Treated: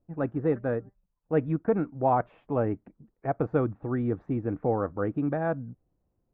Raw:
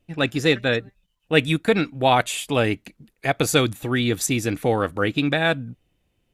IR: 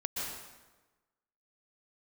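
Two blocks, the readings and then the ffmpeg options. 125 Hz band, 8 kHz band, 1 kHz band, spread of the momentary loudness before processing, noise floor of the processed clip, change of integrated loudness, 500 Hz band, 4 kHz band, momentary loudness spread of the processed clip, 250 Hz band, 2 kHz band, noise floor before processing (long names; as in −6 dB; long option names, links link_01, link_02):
−5.5 dB, below −40 dB, −6.0 dB, 7 LU, −77 dBFS, −7.5 dB, −5.5 dB, below −40 dB, 7 LU, −5.5 dB, −18.5 dB, −70 dBFS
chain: -af "lowpass=frequency=1200:width=0.5412,lowpass=frequency=1200:width=1.3066,volume=-5.5dB"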